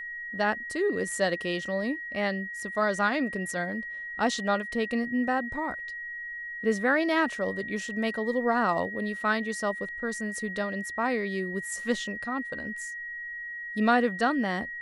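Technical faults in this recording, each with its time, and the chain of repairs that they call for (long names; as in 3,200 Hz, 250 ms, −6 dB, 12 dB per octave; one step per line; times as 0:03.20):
whistle 1,900 Hz −35 dBFS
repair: notch filter 1,900 Hz, Q 30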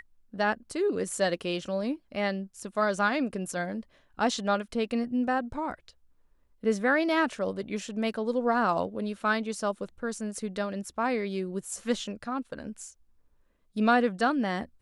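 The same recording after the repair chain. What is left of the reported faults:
none of them is left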